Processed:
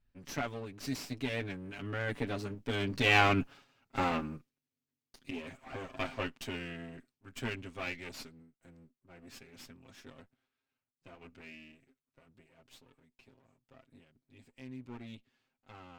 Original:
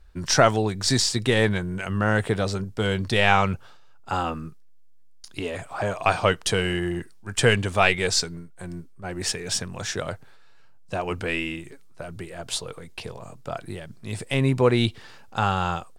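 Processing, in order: comb filter that takes the minimum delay 7.3 ms; Doppler pass-by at 3.73 s, 14 m/s, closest 8.5 m; fifteen-band graphic EQ 250 Hz +11 dB, 2.5 kHz +6 dB, 10 kHz -5 dB; trim -6 dB

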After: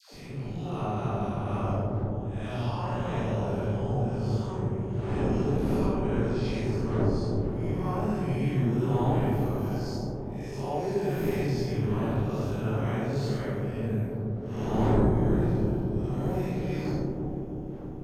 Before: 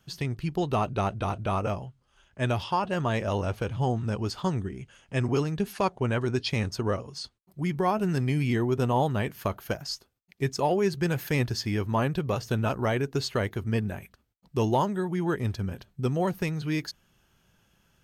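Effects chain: spectral blur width 187 ms; wind noise 330 Hz -34 dBFS; phase dispersion lows, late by 130 ms, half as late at 760 Hz; on a send: feedback echo behind a low-pass 322 ms, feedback 67%, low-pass 620 Hz, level -3 dB; on the sum: plate-style reverb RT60 1.1 s, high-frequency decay 0.45×, DRR 0 dB; trim -5 dB

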